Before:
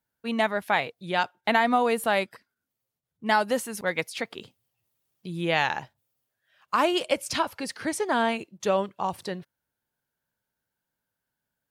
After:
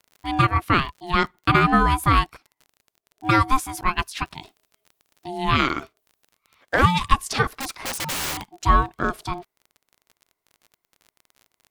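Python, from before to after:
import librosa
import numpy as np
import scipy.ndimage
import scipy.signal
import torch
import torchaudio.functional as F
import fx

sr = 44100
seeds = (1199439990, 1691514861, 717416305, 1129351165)

y = fx.dynamic_eq(x, sr, hz=600.0, q=2.5, threshold_db=-40.0, ratio=4.0, max_db=7)
y = y * np.sin(2.0 * np.pi * 530.0 * np.arange(len(y)) / sr)
y = fx.overflow_wrap(y, sr, gain_db=27.0, at=(7.56, 8.51))
y = fx.dmg_crackle(y, sr, seeds[0], per_s=35.0, level_db=-43.0)
y = F.gain(torch.from_numpy(y), 5.5).numpy()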